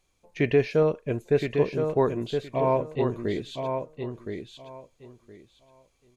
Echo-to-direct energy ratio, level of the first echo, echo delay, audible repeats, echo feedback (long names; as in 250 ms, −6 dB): −6.0 dB, −6.0 dB, 1,018 ms, 3, 19%